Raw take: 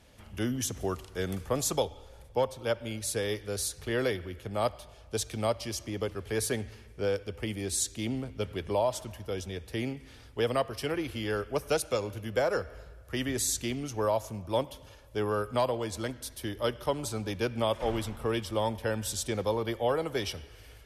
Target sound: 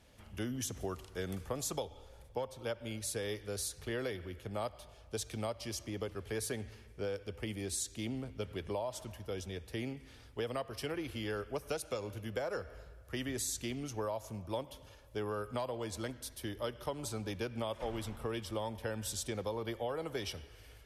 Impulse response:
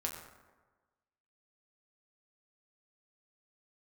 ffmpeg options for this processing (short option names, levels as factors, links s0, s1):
-af "acompressor=threshold=0.0355:ratio=6,volume=0.596"